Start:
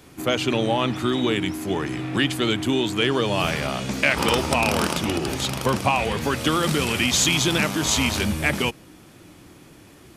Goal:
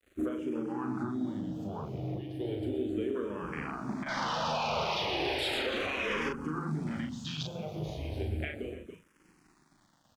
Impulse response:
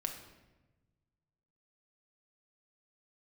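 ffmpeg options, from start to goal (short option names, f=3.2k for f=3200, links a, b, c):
-filter_complex "[0:a]highshelf=f=6.8k:g=4.5,acompressor=threshold=-28dB:ratio=12,bandreject=f=65.63:t=h:w=4,bandreject=f=131.26:t=h:w=4,bandreject=f=196.89:t=h:w=4,bandreject=f=262.52:t=h:w=4,bandreject=f=328.15:t=h:w=4,acrusher=bits=6:mix=0:aa=0.000001,aecho=1:1:122.4|282.8:0.398|0.316,asettb=1/sr,asplit=3[a][b][c];[a]atrim=end=4.064[d];[b]atrim=start=4.06:end=6.29,asetpts=PTS-STARTPTS,afade=t=in:d=0.004:c=qsin,afade=t=out:st=2.226:d=0.004:c=qsin,asplit=2[e][f];[f]highpass=f=720:p=1,volume=28dB,asoftclip=type=tanh:threshold=-16dB[g];[e][g]amix=inputs=2:normalize=0,lowpass=f=7.8k:p=1,volume=-6dB[h];[c]atrim=start=6.286[i];[d][h]acrossfade=d=0.004:c1=hsin:c2=qsin[j];[j][i]acrossfade=d=0.004:c1=qsin:c2=hsin,afwtdn=0.0251,aemphasis=mode=reproduction:type=50kf,asplit=2[k][l];[l]adelay=39,volume=-4.5dB[m];[k][m]amix=inputs=2:normalize=0,alimiter=limit=-23.5dB:level=0:latency=1:release=467,asplit=2[n][o];[o]afreqshift=-0.35[p];[n][p]amix=inputs=2:normalize=1,volume=2dB"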